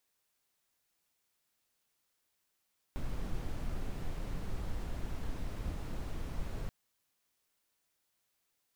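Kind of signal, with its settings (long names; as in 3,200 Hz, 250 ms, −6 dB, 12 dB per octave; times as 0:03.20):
noise brown, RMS −36 dBFS 3.73 s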